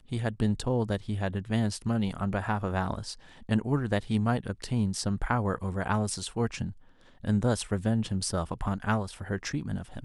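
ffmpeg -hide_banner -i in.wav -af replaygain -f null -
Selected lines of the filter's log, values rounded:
track_gain = +11.6 dB
track_peak = 0.188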